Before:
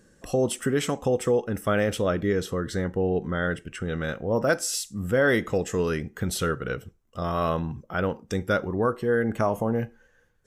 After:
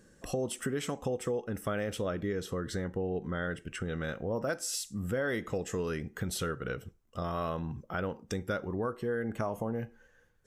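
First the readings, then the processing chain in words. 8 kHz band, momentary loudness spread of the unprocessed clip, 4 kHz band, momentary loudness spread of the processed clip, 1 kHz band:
−6.5 dB, 7 LU, −7.0 dB, 5 LU, −8.5 dB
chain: downward compressor 2.5 to 1, threshold −31 dBFS, peak gain reduction 9.5 dB
level −2 dB

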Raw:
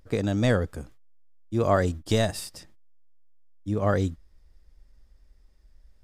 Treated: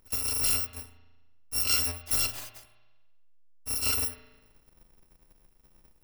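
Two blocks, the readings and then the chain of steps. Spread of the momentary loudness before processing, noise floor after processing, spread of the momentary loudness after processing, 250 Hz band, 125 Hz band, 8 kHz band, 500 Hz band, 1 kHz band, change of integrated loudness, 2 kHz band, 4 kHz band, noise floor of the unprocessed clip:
14 LU, −64 dBFS, 17 LU, −20.0 dB, −16.0 dB, +12.5 dB, −21.5 dB, −12.5 dB, −0.5 dB, −4.0 dB, +6.5 dB, −58 dBFS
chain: samples in bit-reversed order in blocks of 256 samples
bass and treble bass −4 dB, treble −1 dB
spring reverb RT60 1.2 s, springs 36 ms, chirp 30 ms, DRR 10.5 dB
level −3.5 dB

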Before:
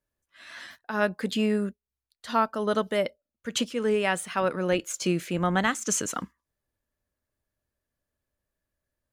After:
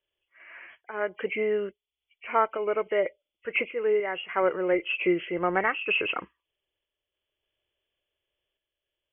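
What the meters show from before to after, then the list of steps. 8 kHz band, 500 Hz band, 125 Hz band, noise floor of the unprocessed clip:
below −40 dB, +1.5 dB, −12.0 dB, below −85 dBFS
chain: hearing-aid frequency compression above 1,900 Hz 4 to 1
low shelf with overshoot 300 Hz −7 dB, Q 3
sample-and-hold tremolo 3.5 Hz

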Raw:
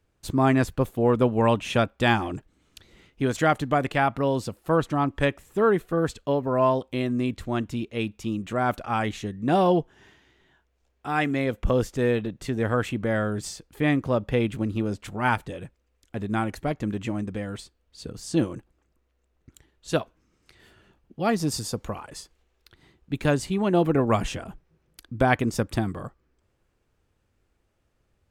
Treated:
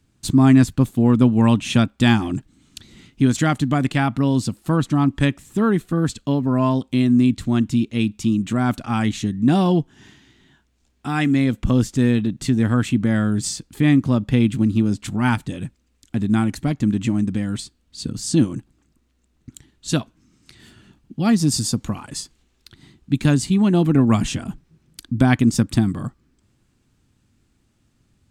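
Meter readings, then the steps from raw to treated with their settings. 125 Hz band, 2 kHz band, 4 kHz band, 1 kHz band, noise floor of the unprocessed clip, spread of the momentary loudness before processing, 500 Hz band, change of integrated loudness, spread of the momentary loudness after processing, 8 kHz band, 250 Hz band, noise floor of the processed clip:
+9.0 dB, +1.0 dB, +6.5 dB, −1.0 dB, −71 dBFS, 14 LU, −2.5 dB, +6.0 dB, 13 LU, +9.5 dB, +9.5 dB, −65 dBFS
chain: in parallel at −3 dB: downward compressor, threshold −33 dBFS, peak gain reduction 16.5 dB
on the sum: octave-band graphic EQ 125/250/500/4,000/8,000 Hz +7/+11/−8/+5/+8 dB
level −1 dB

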